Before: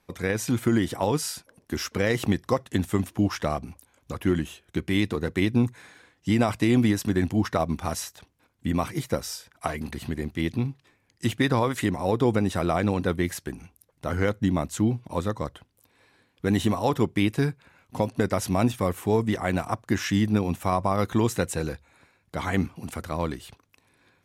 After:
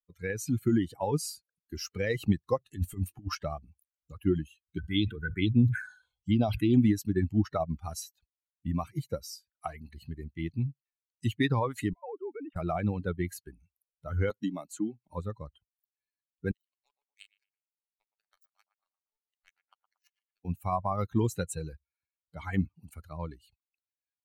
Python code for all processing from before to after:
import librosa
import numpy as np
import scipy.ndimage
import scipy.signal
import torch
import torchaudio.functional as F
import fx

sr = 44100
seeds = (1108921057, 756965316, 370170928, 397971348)

y = fx.chain(x, sr, fx.over_compress(threshold_db=-26.0, ratio=-0.5),
    fx.doubler(ms=21.0, db=-12.0), at=(2.64, 3.35))
y = fx.chain(y, sr, fx.small_body(hz=(1500.0, 3300.0), ring_ms=25, db=13),
    fx.env_phaser(low_hz=260.0, high_hz=1700.0, full_db=-17.5),
    fx.sustainer(db_per_s=66.0), at=(4.78, 6.74))
y = fx.chain(y, sr, fx.sine_speech(),
    fx.bandpass_edges(low_hz=270.0, high_hz=2700.0),
    fx.level_steps(step_db=15), at=(11.93, 12.56))
y = fx.chain(y, sr, fx.highpass(hz=250.0, slope=12),
    fx.band_squash(depth_pct=70), at=(14.3, 15.08))
y = fx.chain(y, sr, fx.highpass(hz=1100.0, slope=12),
    fx.power_curve(exponent=3.0),
    fx.echo_tape(ms=117, feedback_pct=69, wet_db=-4.0, lp_hz=1900.0, drive_db=19.0, wow_cents=10), at=(16.51, 20.45))
y = fx.bin_expand(y, sr, power=2.0)
y = fx.low_shelf(y, sr, hz=240.0, db=6.0)
y = y * librosa.db_to_amplitude(-2.0)